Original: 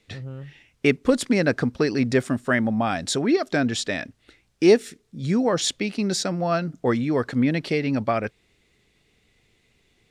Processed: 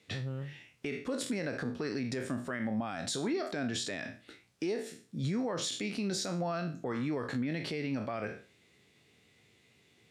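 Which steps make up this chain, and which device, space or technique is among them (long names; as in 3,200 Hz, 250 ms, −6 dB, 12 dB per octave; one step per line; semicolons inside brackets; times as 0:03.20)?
peak hold with a decay on every bin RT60 0.32 s
podcast mastering chain (high-pass filter 90 Hz 24 dB per octave; downward compressor 4 to 1, threshold −28 dBFS, peak gain reduction 15 dB; brickwall limiter −23.5 dBFS, peak gain reduction 9 dB; level −1.5 dB; MP3 112 kbit/s 48,000 Hz)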